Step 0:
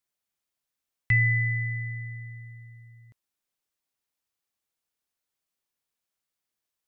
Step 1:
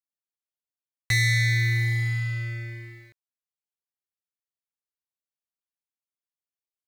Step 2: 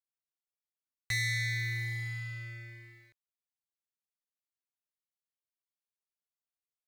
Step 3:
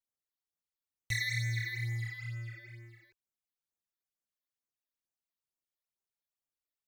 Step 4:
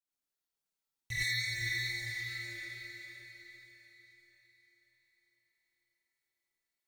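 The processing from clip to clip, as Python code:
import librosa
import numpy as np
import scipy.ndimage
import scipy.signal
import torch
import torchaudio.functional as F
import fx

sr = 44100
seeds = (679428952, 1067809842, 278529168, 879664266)

y1 = fx.leveller(x, sr, passes=5)
y1 = y1 * 10.0 ** (-6.0 / 20.0)
y2 = fx.peak_eq(y1, sr, hz=210.0, db=-6.5, octaves=2.8)
y2 = y2 * 10.0 ** (-8.0 / 20.0)
y3 = fx.phaser_stages(y2, sr, stages=12, low_hz=130.0, high_hz=4300.0, hz=2.2, feedback_pct=45)
y4 = fx.echo_diffused(y3, sr, ms=456, feedback_pct=45, wet_db=-5)
y4 = fx.rev_gated(y4, sr, seeds[0], gate_ms=140, shape='rising', drr_db=-8.0)
y4 = y4 * 10.0 ** (-7.0 / 20.0)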